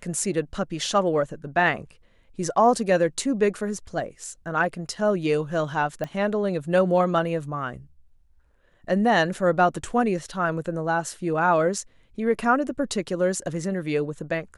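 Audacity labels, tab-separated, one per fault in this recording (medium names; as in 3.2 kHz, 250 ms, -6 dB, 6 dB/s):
6.040000	6.040000	pop -18 dBFS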